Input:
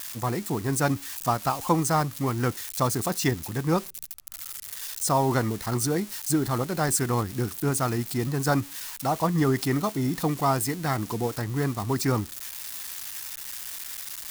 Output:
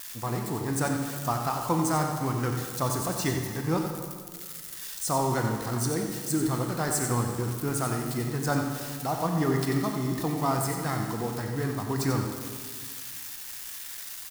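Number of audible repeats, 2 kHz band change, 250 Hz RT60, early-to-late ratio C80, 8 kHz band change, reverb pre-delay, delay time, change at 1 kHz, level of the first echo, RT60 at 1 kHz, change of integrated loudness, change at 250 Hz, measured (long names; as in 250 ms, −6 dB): 1, −2.5 dB, 2.0 s, 4.0 dB, −2.5 dB, 17 ms, 91 ms, −2.5 dB, −8.0 dB, 1.7 s, −2.5 dB, −2.0 dB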